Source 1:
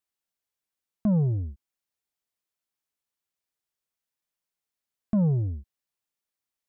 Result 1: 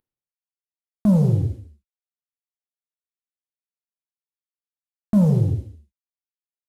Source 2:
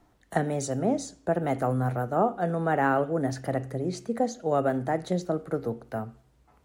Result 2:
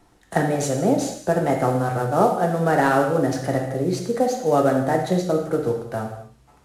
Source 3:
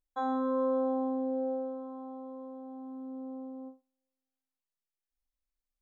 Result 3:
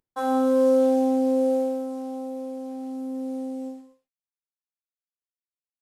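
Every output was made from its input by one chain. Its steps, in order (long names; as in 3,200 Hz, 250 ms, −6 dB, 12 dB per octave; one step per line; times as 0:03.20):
variable-slope delta modulation 64 kbit/s
reverb whose tail is shaped and stops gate 290 ms falling, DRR 1.5 dB
level +5 dB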